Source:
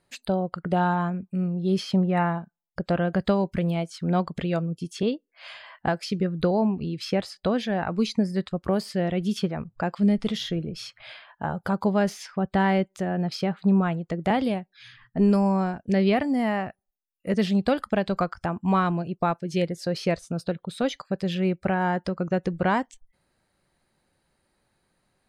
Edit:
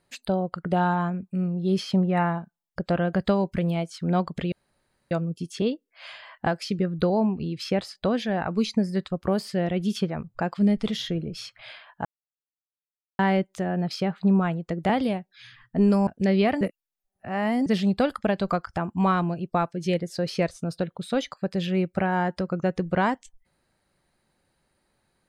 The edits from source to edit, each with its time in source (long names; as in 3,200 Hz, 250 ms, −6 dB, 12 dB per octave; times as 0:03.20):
0:04.52: splice in room tone 0.59 s
0:11.46–0:12.60: silence
0:15.48–0:15.75: remove
0:16.29–0:17.34: reverse